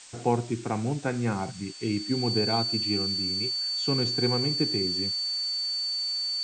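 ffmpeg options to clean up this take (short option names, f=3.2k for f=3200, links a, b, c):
-af "adeclick=t=4,bandreject=f=4.5k:w=30,afftdn=nr=30:nf=-37"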